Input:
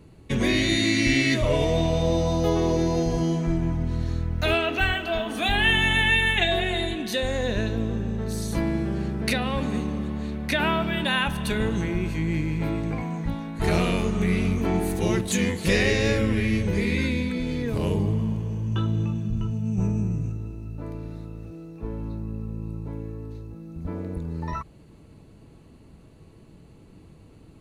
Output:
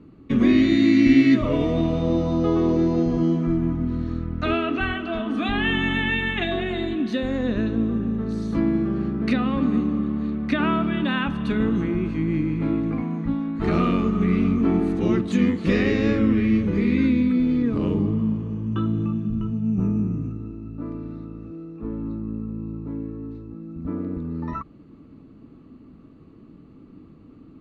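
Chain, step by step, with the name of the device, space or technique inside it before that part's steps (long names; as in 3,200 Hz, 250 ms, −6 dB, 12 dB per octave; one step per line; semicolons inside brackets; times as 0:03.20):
inside a cardboard box (low-pass filter 3,700 Hz 12 dB per octave; hollow resonant body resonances 260/1,200 Hz, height 15 dB, ringing for 30 ms)
level −4.5 dB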